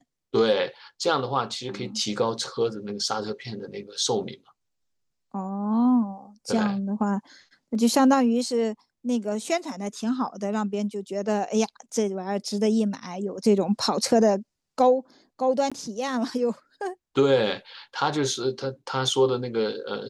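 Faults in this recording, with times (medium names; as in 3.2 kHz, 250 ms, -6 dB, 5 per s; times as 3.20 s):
15.70–15.72 s: dropout 16 ms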